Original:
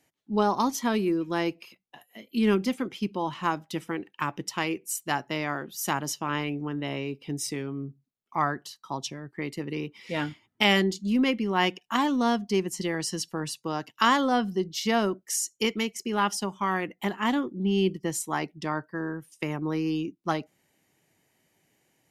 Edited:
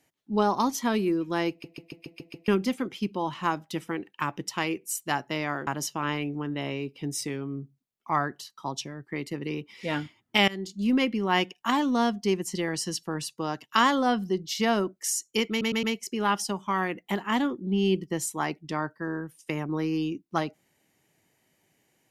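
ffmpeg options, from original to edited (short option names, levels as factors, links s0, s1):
-filter_complex "[0:a]asplit=13[s0][s1][s2][s3][s4][s5][s6][s7][s8][s9][s10][s11][s12];[s0]atrim=end=1.642[s13];[s1]atrim=start=1.498:end=1.642[s14];[s2]atrim=start=1.498:end=1.642[s15];[s3]atrim=start=1.498:end=1.642[s16];[s4]atrim=start=1.498:end=1.642[s17];[s5]atrim=start=1.498:end=1.642[s18];[s6]atrim=start=1.498:end=1.642[s19];[s7]atrim=start=2.478:end=5.672[s20];[s8]atrim=start=5.928:end=10.74,asetpts=PTS-STARTPTS,afade=t=out:st=4.808:d=0.004:c=hsin:silence=0.0749894[s21];[s9]atrim=start=10.74:end=15.872,asetpts=PTS-STARTPTS,afade=t=in:d=0.4:silence=0.0749894[s22];[s10]atrim=start=15.758:end=15.872[s23];[s11]atrim=start=15.758:end=15.872[s24];[s12]atrim=start=15.758[s25];[s13][s14]acrossfade=d=0.004:c1=hsin:c2=hsin[s26];[s26][s15]acrossfade=d=0.004:c1=hsin:c2=hsin[s27];[s27][s16]acrossfade=d=0.004:c1=hsin:c2=hsin[s28];[s28][s17]acrossfade=d=0.004:c1=hsin:c2=hsin[s29];[s29][s18]acrossfade=d=0.004:c1=hsin:c2=hsin[s30];[s30][s19]acrossfade=d=0.004:c1=hsin:c2=hsin[s31];[s31][s20]acrossfade=d=0.004:c1=hsin:c2=hsin[s32];[s21][s22]concat=n=2:v=0:a=1[s33];[s32][s33]acrossfade=d=0.004:c1=hsin:c2=hsin[s34];[s34][s23]acrossfade=d=0.004:c1=hsin:c2=hsin[s35];[s35][s24]acrossfade=d=0.004:c1=hsin:c2=hsin[s36];[s36][s25]acrossfade=d=0.004:c1=hsin:c2=hsin"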